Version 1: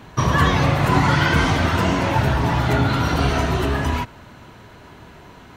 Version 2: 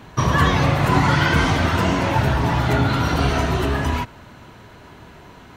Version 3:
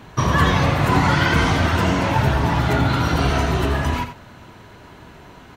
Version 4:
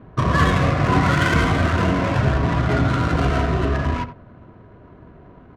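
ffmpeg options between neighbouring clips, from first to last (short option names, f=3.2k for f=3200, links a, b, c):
-af anull
-af "aecho=1:1:86:0.299"
-af "adynamicsmooth=sensitivity=1.5:basefreq=900,asuperstop=centerf=860:order=4:qfactor=6.1"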